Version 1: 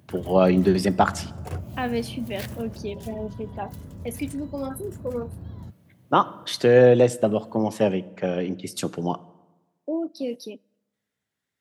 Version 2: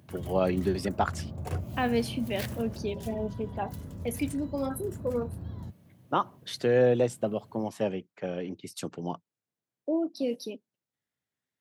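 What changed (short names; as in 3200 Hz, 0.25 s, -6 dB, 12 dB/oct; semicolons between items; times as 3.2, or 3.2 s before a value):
first voice -5.0 dB; reverb: off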